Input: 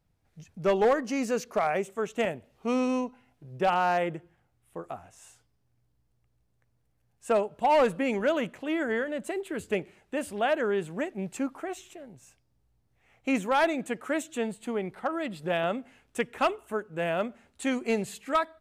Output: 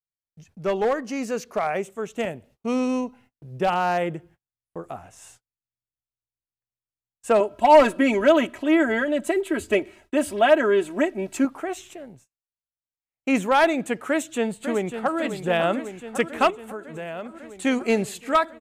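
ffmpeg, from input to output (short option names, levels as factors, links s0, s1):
-filter_complex "[0:a]asettb=1/sr,asplit=3[s0][s1][s2];[s0]atrim=end=1.894[s3];[s1]atrim=start=1.89:end=4.95,asetpts=PTS-STARTPTS,afade=t=in:d=0.004:c=qsin,afade=t=out:st=3.056:d=0.004:c=qsin,equalizer=f=1300:w=0.32:g=-4[s4];[s2]atrim=start=4.946[s5];[s3][s4]acrossfade=d=0.004:c1=hsin:c2=qsin[s6];[s6][s5]acrossfade=d=0.004:c1=qsin:c2=hsin,asettb=1/sr,asplit=3[s7][s8][s9];[s7]atrim=end=7.404[s10];[s8]atrim=start=7.4:end=11.45,asetpts=PTS-STARTPTS,afade=t=in:d=0.004:c=qsin,afade=t=out:st=4.046:d=0.004:c=qsin,aecho=1:1:3.1:0.84,atrim=end_sample=178605[s11];[s9]atrim=start=11.446[s12];[s10][s11]acrossfade=d=0.004:c1=hsin:c2=qsin[s13];[s13][s12]acrossfade=d=0.004:c1=qsin:c2=hsin,asplit=2[s14][s15];[s15]afade=t=in:st=14.08:d=0.01,afade=t=out:st=15.18:d=0.01,aecho=0:1:550|1100|1650|2200|2750|3300|3850|4400|4950|5500|6050|6600:0.354813|0.26611|0.199583|0.149687|0.112265|0.0841989|0.0631492|0.0473619|0.0355214|0.0266411|0.0199808|0.0149856[s16];[s14][s16]amix=inputs=2:normalize=0,asettb=1/sr,asplit=3[s17][s18][s19];[s17]atrim=end=16.504[s20];[s18]atrim=start=16.5:end=17.65,asetpts=PTS-STARTPTS,afade=t=in:d=0.004:c=qsin,afade=t=out:st=1.146:d=0.004:c=qsin,acompressor=threshold=0.00891:ratio=2.5:attack=3.2:release=140:knee=1:detection=peak[s21];[s19]atrim=start=17.646[s22];[s20][s21]acrossfade=d=0.004:c1=hsin:c2=qsin[s23];[s23][s22]acrossfade=d=0.004:c1=qsin:c2=hsin,asplit=3[s24][s25][s26];[s24]atrim=end=12.29,asetpts=PTS-STARTPTS,afade=t=out:st=12.05:d=0.24:silence=0.334965[s27];[s25]atrim=start=12.29:end=13.11,asetpts=PTS-STARTPTS,volume=0.335[s28];[s26]atrim=start=13.11,asetpts=PTS-STARTPTS,afade=t=in:d=0.24:silence=0.334965[s29];[s27][s28][s29]concat=n=3:v=0:a=1,agate=range=0.0158:threshold=0.00141:ratio=16:detection=peak,dynaudnorm=f=650:g=7:m=2"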